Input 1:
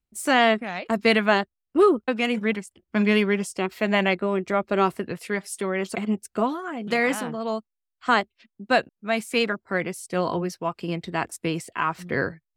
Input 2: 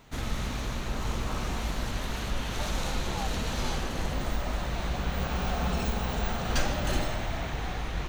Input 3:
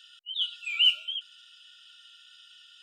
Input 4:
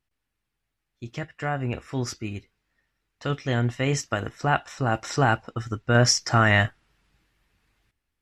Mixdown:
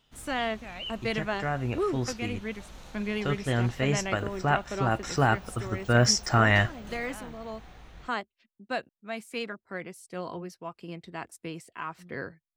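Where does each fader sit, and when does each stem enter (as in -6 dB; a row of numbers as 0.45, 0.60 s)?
-11.5, -16.5, -17.5, -2.5 dB; 0.00, 0.00, 0.00, 0.00 s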